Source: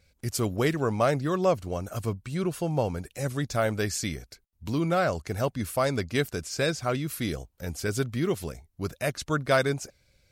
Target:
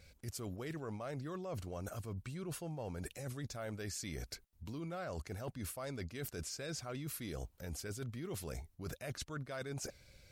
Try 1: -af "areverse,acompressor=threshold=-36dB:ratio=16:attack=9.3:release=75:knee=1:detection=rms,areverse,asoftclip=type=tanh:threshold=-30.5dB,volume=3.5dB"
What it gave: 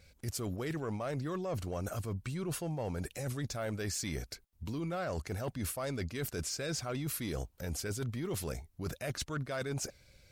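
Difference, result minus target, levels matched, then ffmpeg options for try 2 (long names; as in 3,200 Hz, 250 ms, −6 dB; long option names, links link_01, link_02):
downward compressor: peak gain reduction −7 dB
-af "areverse,acompressor=threshold=-43.5dB:ratio=16:attack=9.3:release=75:knee=1:detection=rms,areverse,asoftclip=type=tanh:threshold=-30.5dB,volume=3.5dB"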